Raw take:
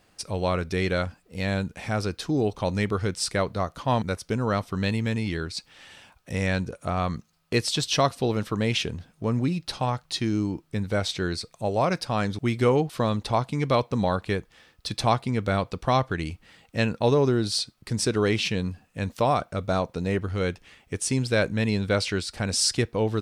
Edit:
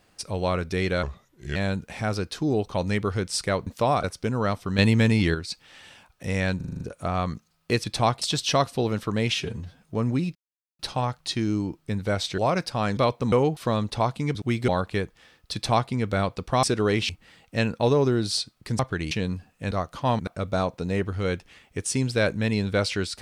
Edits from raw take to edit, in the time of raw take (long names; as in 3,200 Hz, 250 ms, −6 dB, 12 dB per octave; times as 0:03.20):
0:01.03–0:01.43: play speed 76%
0:03.54–0:04.10: swap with 0:19.06–0:19.43
0:04.85–0:05.41: clip gain +7 dB
0:06.63: stutter 0.04 s, 7 plays
0:08.79–0:09.10: time-stretch 1.5×
0:09.64: splice in silence 0.44 s
0:11.23–0:11.73: remove
0:12.32–0:12.65: swap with 0:13.68–0:14.03
0:14.88–0:15.26: duplicate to 0:07.66
0:15.98–0:16.30: swap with 0:18.00–0:18.46